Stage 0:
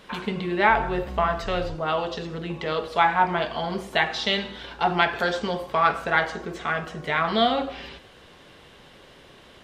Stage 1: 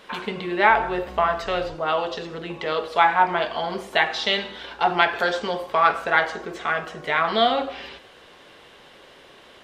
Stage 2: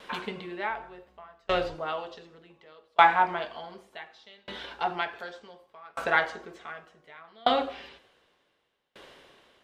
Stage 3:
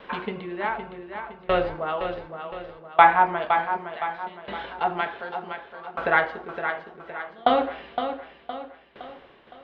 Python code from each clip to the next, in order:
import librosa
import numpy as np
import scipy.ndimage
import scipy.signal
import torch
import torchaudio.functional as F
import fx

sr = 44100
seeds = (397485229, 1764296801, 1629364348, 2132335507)

y1 = fx.bass_treble(x, sr, bass_db=-10, treble_db=-2)
y1 = F.gain(torch.from_numpy(y1), 2.5).numpy()
y2 = fx.tremolo_decay(y1, sr, direction='decaying', hz=0.67, depth_db=34)
y3 = fx.air_absorb(y2, sr, metres=380.0)
y3 = fx.echo_feedback(y3, sr, ms=514, feedback_pct=45, wet_db=-8)
y3 = F.gain(torch.from_numpy(y3), 6.0).numpy()